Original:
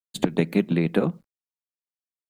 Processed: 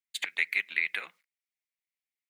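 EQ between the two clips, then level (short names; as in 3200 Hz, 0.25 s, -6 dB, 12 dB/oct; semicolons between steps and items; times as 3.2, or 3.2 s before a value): resonant high-pass 2100 Hz, resonance Q 5.3; -3.0 dB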